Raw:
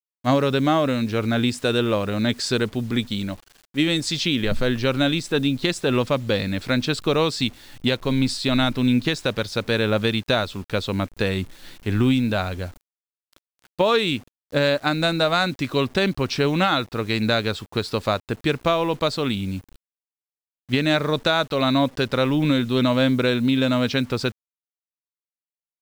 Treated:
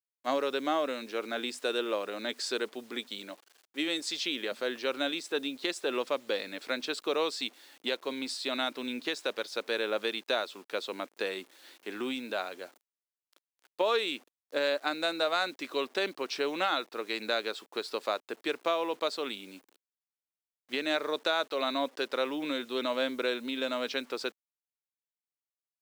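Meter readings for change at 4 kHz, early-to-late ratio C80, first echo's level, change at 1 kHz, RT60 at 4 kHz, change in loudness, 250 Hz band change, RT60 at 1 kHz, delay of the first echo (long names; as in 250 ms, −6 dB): −8.5 dB, no reverb audible, no echo audible, −8.5 dB, no reverb audible, −10.5 dB, −16.0 dB, no reverb audible, no echo audible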